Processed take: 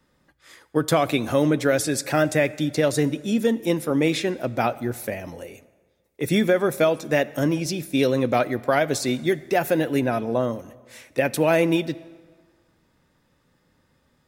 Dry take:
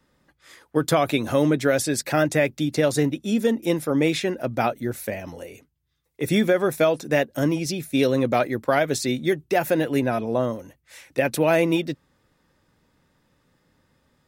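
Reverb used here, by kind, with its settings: plate-style reverb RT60 1.6 s, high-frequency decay 0.75×, DRR 17.5 dB

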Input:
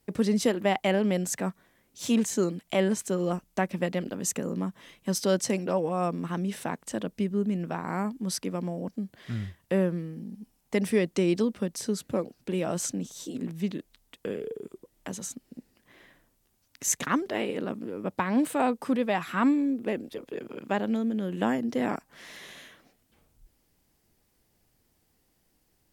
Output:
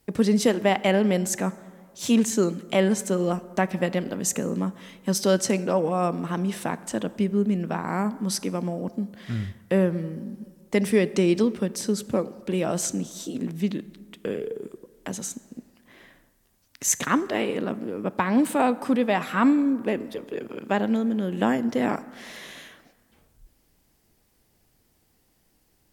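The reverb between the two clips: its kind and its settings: plate-style reverb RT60 1.8 s, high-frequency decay 0.45×, DRR 15.5 dB; gain +4 dB

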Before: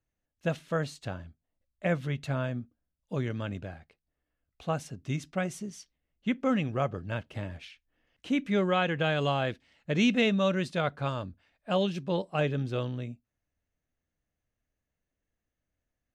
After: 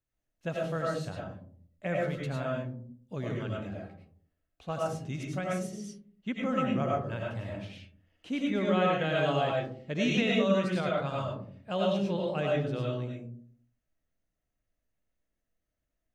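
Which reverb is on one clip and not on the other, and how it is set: digital reverb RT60 0.54 s, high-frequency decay 0.3×, pre-delay 60 ms, DRR -3 dB; gain -5.5 dB

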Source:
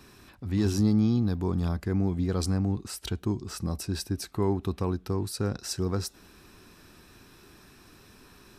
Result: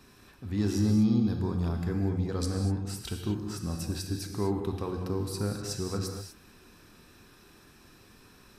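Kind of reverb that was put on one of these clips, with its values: non-linear reverb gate 0.27 s flat, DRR 2.5 dB; gain -4 dB

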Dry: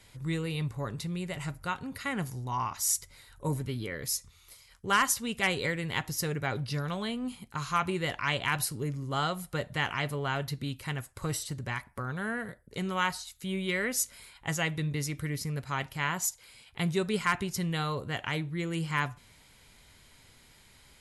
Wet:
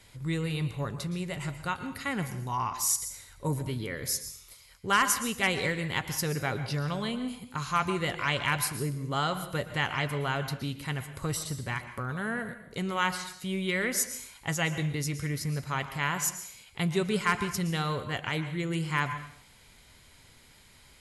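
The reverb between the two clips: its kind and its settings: plate-style reverb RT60 0.59 s, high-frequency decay 1×, pre-delay 0.105 s, DRR 10 dB; gain +1 dB

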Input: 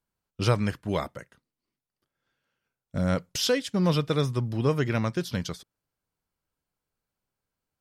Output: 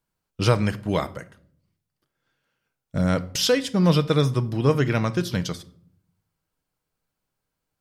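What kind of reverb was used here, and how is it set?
shoebox room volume 810 m³, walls furnished, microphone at 0.56 m; gain +4 dB

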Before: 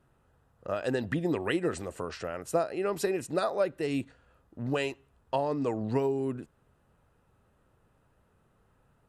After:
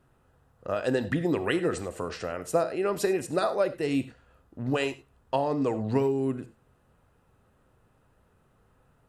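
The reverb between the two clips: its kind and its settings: non-linear reverb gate 0.12 s flat, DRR 11.5 dB; gain +2.5 dB

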